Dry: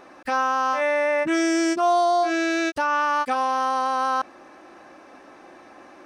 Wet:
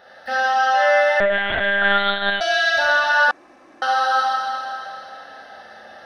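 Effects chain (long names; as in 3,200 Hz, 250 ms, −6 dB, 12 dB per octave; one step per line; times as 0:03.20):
high-pass filter 54 Hz
parametric band 2,900 Hz +7 dB 2.7 octaves
phaser with its sweep stopped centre 1,600 Hz, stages 8
four-comb reverb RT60 2.8 s, combs from 28 ms, DRR −7 dB
0:01.20–0:02.41: one-pitch LPC vocoder at 8 kHz 200 Hz
0:03.31–0:03.82: fill with room tone
level −2 dB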